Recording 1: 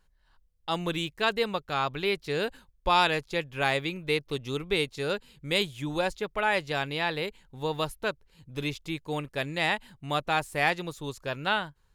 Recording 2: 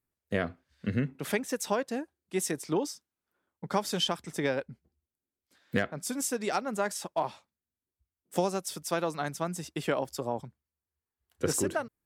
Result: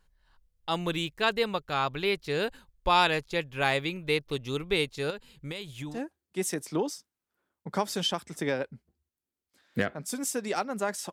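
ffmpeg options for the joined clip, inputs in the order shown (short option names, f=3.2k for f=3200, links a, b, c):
-filter_complex "[0:a]asettb=1/sr,asplit=3[a][b][c];[a]atrim=end=5.104[d];[b]atrim=start=5.1:end=6.01,asetpts=PTS-STARTPTS,afade=t=in:d=0.004:c=qsin,afade=t=out:st=0.906:d=0.004:c=qsin,acompressor=threshold=-32dB:ratio=16:attack=3.2:release=140:knee=1:detection=peak[e];[c]atrim=start=6.006[f];[d][e]acrossfade=d=0.004:c1=hsin:c2=qsin[g];[g][f]acrossfade=d=0.004:c1=qsin:c2=hsin,apad=whole_dur=11.12,atrim=end=11.12,atrim=end=6.01,asetpts=PTS-STARTPTS[h];[1:a]atrim=start=1.84:end=7.09,asetpts=PTS-STARTPTS[i];[h][i]acrossfade=d=0.14:c1=tri:c2=tri"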